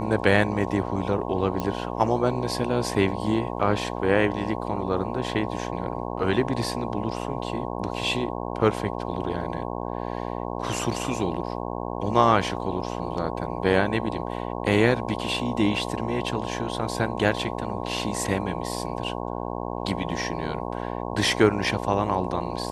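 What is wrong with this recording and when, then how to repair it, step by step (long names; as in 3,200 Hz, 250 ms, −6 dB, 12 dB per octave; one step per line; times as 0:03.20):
mains buzz 60 Hz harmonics 18 −31 dBFS
0:01.60: click −14 dBFS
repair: click removal
hum removal 60 Hz, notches 18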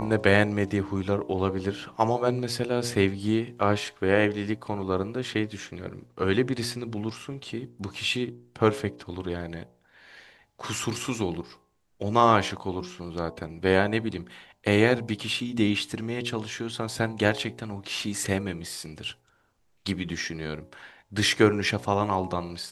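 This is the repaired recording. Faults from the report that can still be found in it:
none of them is left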